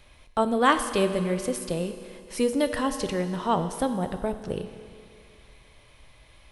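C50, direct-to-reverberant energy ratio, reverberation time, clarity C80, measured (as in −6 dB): 9.5 dB, 8.5 dB, 2.3 s, 10.5 dB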